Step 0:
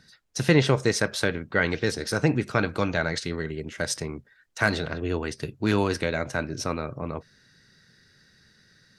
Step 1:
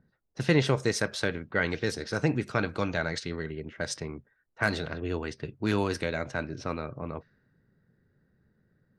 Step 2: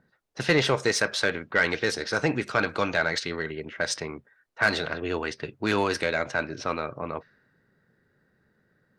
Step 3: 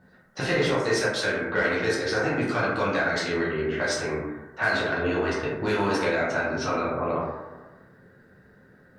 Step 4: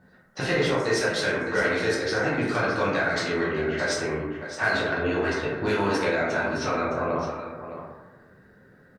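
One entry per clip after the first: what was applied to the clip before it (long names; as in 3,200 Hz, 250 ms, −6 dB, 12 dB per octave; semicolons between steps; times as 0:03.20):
low-pass that shuts in the quiet parts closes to 710 Hz, open at −22 dBFS; level −4 dB
mid-hump overdrive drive 14 dB, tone 5,200 Hz, clips at −9.5 dBFS
downward compressor 3 to 1, threshold −37 dBFS, peak gain reduction 14.5 dB; dense smooth reverb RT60 1.2 s, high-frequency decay 0.3×, pre-delay 0 ms, DRR −8 dB; level +3.5 dB
single-tap delay 614 ms −11 dB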